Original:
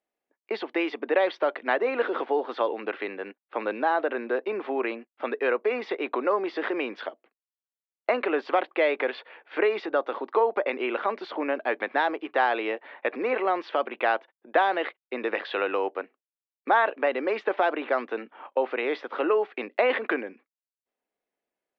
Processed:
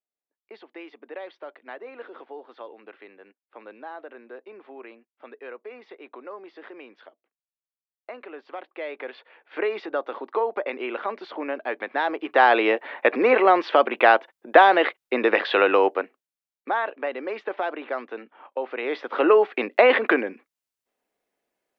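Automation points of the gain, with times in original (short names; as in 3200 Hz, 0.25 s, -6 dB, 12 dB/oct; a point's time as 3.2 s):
8.43 s -14.5 dB
9.68 s -2 dB
11.91 s -2 dB
12.53 s +8.5 dB
15.86 s +8.5 dB
16.73 s -4 dB
18.66 s -4 dB
19.28 s +7 dB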